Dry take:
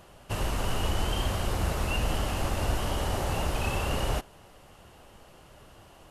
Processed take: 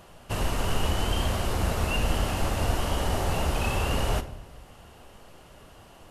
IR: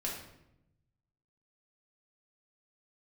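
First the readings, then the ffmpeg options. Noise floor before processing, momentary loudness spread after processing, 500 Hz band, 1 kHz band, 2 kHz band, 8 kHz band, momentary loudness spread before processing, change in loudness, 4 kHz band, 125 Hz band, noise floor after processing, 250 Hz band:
-54 dBFS, 4 LU, +2.5 dB, +2.0 dB, +2.0 dB, +2.0 dB, 3 LU, +2.5 dB, +2.0 dB, +2.5 dB, -51 dBFS, +2.5 dB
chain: -filter_complex "[0:a]asplit=2[a][b];[1:a]atrim=start_sample=2205[c];[b][c]afir=irnorm=-1:irlink=0,volume=-9.5dB[d];[a][d]amix=inputs=2:normalize=0"

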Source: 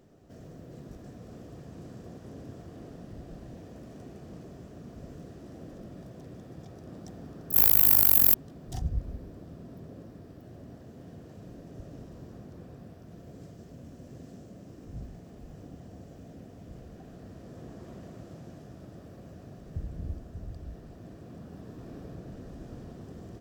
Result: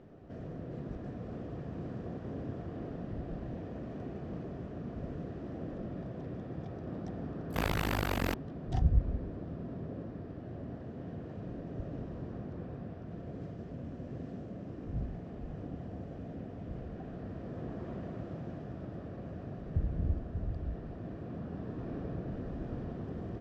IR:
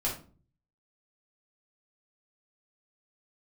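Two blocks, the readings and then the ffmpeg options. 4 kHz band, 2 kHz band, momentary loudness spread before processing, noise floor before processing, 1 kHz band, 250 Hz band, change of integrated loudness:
-3.5 dB, +3.0 dB, 24 LU, -50 dBFS, +4.5 dB, +4.5 dB, -19.5 dB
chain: -af "lowpass=2.5k,volume=4.5dB"

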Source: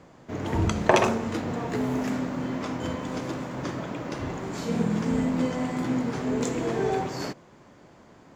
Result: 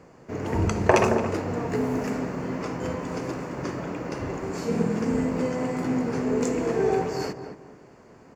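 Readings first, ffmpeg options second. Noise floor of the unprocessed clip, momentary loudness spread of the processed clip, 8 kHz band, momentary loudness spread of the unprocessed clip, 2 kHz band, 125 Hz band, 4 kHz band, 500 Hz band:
-53 dBFS, 10 LU, 0.0 dB, 10 LU, +0.5 dB, +0.5 dB, -3.5 dB, +3.0 dB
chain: -filter_complex "[0:a]superequalizer=7b=1.58:13b=0.398,asplit=2[a][b];[b]adelay=221,lowpass=f=1.3k:p=1,volume=-7dB,asplit=2[c][d];[d]adelay=221,lowpass=f=1.3k:p=1,volume=0.32,asplit=2[e][f];[f]adelay=221,lowpass=f=1.3k:p=1,volume=0.32,asplit=2[g][h];[h]adelay=221,lowpass=f=1.3k:p=1,volume=0.32[i];[c][e][g][i]amix=inputs=4:normalize=0[j];[a][j]amix=inputs=2:normalize=0"

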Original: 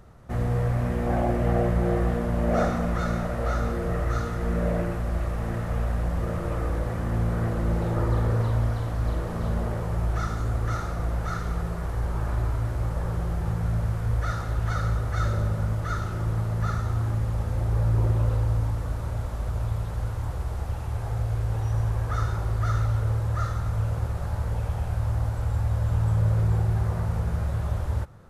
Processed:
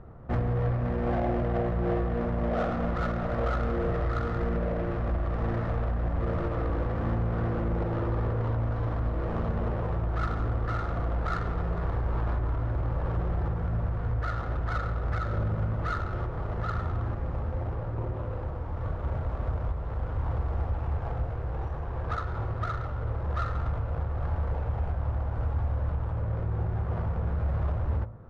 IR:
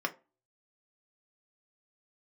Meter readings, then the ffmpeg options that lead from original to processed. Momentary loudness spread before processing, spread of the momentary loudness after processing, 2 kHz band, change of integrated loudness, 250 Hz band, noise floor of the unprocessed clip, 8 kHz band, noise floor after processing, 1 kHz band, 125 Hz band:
6 LU, 5 LU, -2.5 dB, -3.5 dB, -3.0 dB, -31 dBFS, n/a, -34 dBFS, -1.0 dB, -4.5 dB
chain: -filter_complex "[0:a]alimiter=limit=-21.5dB:level=0:latency=1:release=474,bandreject=f=55.2:t=h:w=4,bandreject=f=110.4:t=h:w=4,bandreject=f=165.6:t=h:w=4,bandreject=f=220.8:t=h:w=4,bandreject=f=276:t=h:w=4,bandreject=f=331.2:t=h:w=4,bandreject=f=386.4:t=h:w=4,bandreject=f=441.6:t=h:w=4,bandreject=f=496.8:t=h:w=4,bandreject=f=552:t=h:w=4,bandreject=f=607.2:t=h:w=4,bandreject=f=662.4:t=h:w=4,bandreject=f=717.6:t=h:w=4,bandreject=f=772.8:t=h:w=4,bandreject=f=828:t=h:w=4,bandreject=f=883.2:t=h:w=4,bandreject=f=938.4:t=h:w=4,bandreject=f=993.6:t=h:w=4,bandreject=f=1.0488k:t=h:w=4,bandreject=f=1.104k:t=h:w=4,asoftclip=type=tanh:threshold=-23dB,adynamicsmooth=sensitivity=5:basefreq=1.1k,asplit=2[a][b];[1:a]atrim=start_sample=2205[c];[b][c]afir=irnorm=-1:irlink=0,volume=-17dB[d];[a][d]amix=inputs=2:normalize=0,volume=4.5dB"

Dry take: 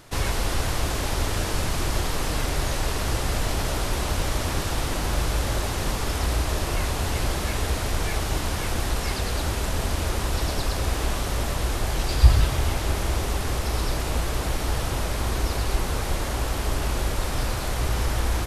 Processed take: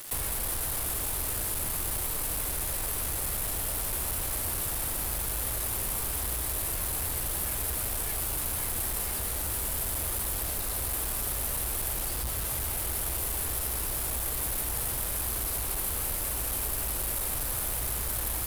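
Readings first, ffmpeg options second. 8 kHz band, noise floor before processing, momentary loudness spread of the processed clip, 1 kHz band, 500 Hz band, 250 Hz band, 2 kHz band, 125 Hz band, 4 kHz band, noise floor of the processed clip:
+3.0 dB, -28 dBFS, 1 LU, -10.0 dB, -11.0 dB, -12.0 dB, -9.0 dB, -12.5 dB, -8.0 dB, -32 dBFS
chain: -filter_complex "[0:a]lowshelf=f=260:g=-6.5,acrossover=split=140|1700[a][b][c];[a]acompressor=threshold=-31dB:ratio=4[d];[b]acompressor=threshold=-39dB:ratio=4[e];[c]acompressor=threshold=-43dB:ratio=4[f];[d][e][f]amix=inputs=3:normalize=0,asoftclip=type=tanh:threshold=-33dB,aexciter=amount=10.2:drive=6.7:freq=8.6k,acrusher=bits=5:mix=0:aa=0.000001"

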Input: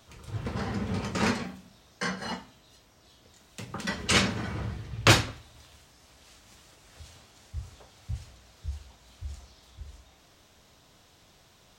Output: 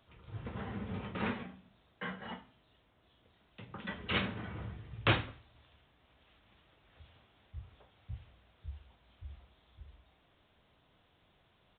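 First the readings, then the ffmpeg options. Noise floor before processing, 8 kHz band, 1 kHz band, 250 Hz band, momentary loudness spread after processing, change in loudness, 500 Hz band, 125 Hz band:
-60 dBFS, under -40 dB, -9.0 dB, -9.0 dB, 24 LU, -10.0 dB, -9.0 dB, -9.0 dB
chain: -af "aresample=8000,aresample=44100,volume=-9dB"

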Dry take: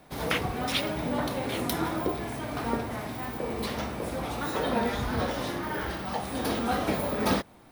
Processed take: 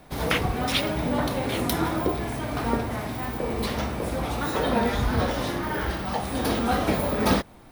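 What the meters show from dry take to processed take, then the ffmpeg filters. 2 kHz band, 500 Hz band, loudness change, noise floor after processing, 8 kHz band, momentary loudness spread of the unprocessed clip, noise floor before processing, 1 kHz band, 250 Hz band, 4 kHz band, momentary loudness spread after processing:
+3.5 dB, +3.5 dB, +4.0 dB, -46 dBFS, +3.5 dB, 6 LU, -50 dBFS, +3.5 dB, +4.0 dB, +3.5 dB, 5 LU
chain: -af "lowshelf=f=66:g=10,volume=3.5dB"

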